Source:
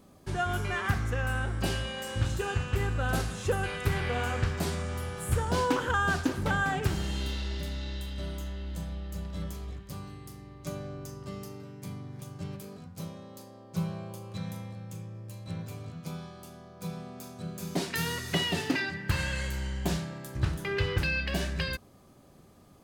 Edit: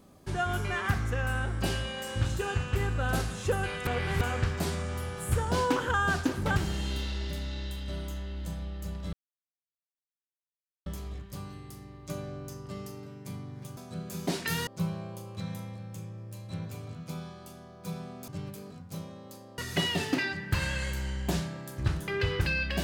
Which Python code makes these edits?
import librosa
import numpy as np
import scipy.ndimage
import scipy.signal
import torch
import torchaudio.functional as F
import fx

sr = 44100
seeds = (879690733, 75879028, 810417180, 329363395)

y = fx.edit(x, sr, fx.reverse_span(start_s=3.87, length_s=0.34),
    fx.cut(start_s=6.56, length_s=0.3),
    fx.insert_silence(at_s=9.43, length_s=1.73),
    fx.swap(start_s=12.34, length_s=1.3, other_s=17.25, other_length_s=0.9), tone=tone)